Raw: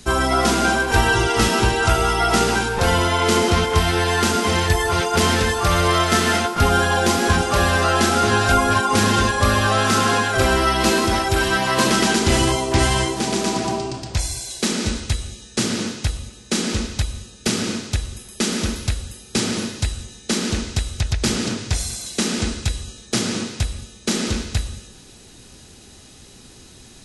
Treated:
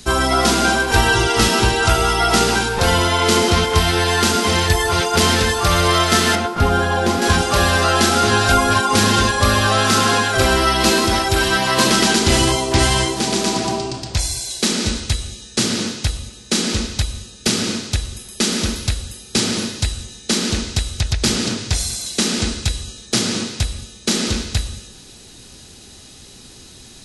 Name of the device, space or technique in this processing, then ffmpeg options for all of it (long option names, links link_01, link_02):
presence and air boost: -filter_complex "[0:a]asettb=1/sr,asplit=3[link_01][link_02][link_03];[link_01]atrim=end=6.354[link_04];[link_02]atrim=start=6.35:end=7.22,asetpts=PTS-STARTPTS,afade=type=in:duration=0.004:curve=qsin,afade=type=out:start_time=0.866:duration=0.004:curve=qsin,highshelf=frequency=2400:gain=-10.5[link_05];[link_03]atrim=start=7.216[link_06];[link_04][link_05]acrossfade=duration=0.004:curve1=hsin:curve2=qsin[link_07];[link_07][link_06]acrossfade=duration=0.004:curve1=qsin:curve2=hsin,equalizer=frequency=4200:width_type=o:width=0.96:gain=4,highshelf=frequency=10000:gain=4.5,volume=1.5dB"